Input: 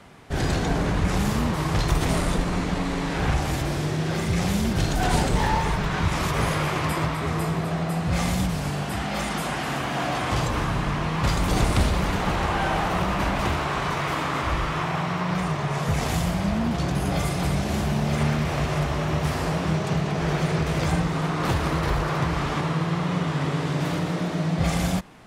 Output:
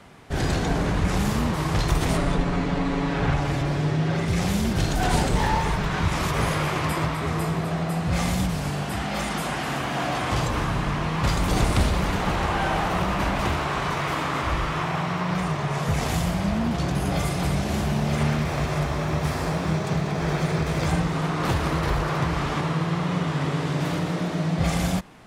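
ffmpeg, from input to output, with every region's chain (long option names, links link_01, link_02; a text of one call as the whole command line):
ffmpeg -i in.wav -filter_complex "[0:a]asettb=1/sr,asplit=3[link_01][link_02][link_03];[link_01]atrim=end=2.174[link_04];[link_02]atrim=start=2.17:end=4.28,asetpts=PTS-STARTPTS,afade=type=in:duration=0.004:curve=qsin,afade=type=out:start_time=2.106:duration=0.004:curve=qsin,aemphasis=mode=reproduction:type=50fm,aecho=1:1:7.1:0.48,atrim=end_sample=93051[link_05];[link_03]atrim=start=4.276[link_06];[link_04][link_05]acrossfade=duration=0.004:curve1=hsin:curve2=qsin[link_07];[link_07][link_06]acrossfade=duration=0.004:curve1=qsin:curve2=hsin,asettb=1/sr,asplit=3[link_08][link_09][link_10];[link_08]atrim=end=18.424[link_11];[link_09]atrim=start=18.42:end=20.84,asetpts=PTS-STARTPTS,afade=type=in:duration=0.004:curve=qsin,afade=type=out:start_time=2.416:duration=0.004:curve=qsin,bandreject=frequency=2900:width=13,aeval=exprs='sgn(val(0))*max(abs(val(0))-0.00398,0)':channel_layout=same[link_12];[link_10]atrim=start=20.836[link_13];[link_11][link_12]acrossfade=duration=0.004:curve1=hsin:curve2=qsin[link_14];[link_14][link_13]acrossfade=duration=0.004:curve1=qsin:curve2=hsin" out.wav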